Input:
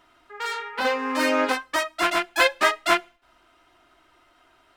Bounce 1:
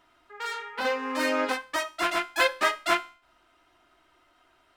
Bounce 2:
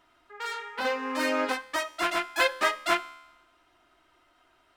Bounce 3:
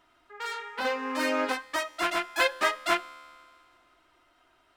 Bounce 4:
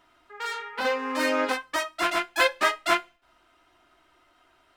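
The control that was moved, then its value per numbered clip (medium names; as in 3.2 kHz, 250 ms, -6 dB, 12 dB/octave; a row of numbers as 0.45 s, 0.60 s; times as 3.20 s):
feedback comb, decay: 0.42 s, 1 s, 2.2 s, 0.19 s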